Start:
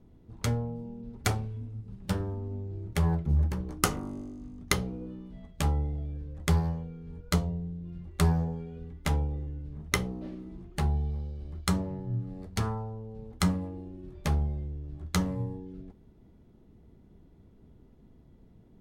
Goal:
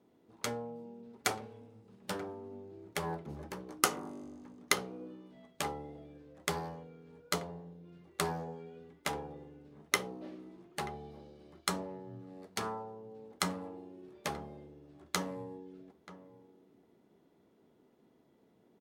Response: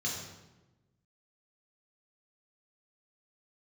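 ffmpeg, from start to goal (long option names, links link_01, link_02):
-filter_complex "[0:a]highpass=350,asplit=2[link_01][link_02];[link_02]adelay=932.9,volume=-15dB,highshelf=frequency=4000:gain=-21[link_03];[link_01][link_03]amix=inputs=2:normalize=0,volume=-1dB"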